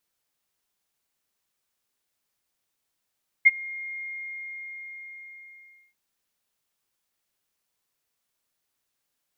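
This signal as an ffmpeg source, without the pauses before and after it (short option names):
-f lavfi -i "aevalsrc='0.376*sin(2*PI*2130*t)':d=2.49:s=44100,afade=t=in:d=0.019,afade=t=out:st=0.019:d=0.029:silence=0.0631,afade=t=out:st=0.56:d=1.93"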